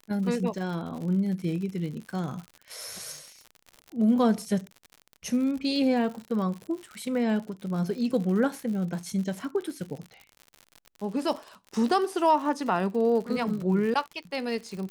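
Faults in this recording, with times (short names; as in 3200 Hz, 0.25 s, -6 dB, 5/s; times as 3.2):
crackle 77/s -35 dBFS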